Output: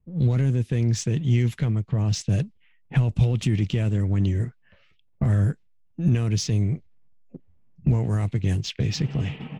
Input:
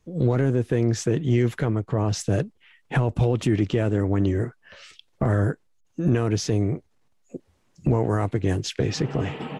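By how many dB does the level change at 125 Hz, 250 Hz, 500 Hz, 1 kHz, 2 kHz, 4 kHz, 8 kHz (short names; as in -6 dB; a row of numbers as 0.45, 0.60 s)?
+2.5, -2.5, -9.0, -9.5, -4.5, +1.0, 0.0 dB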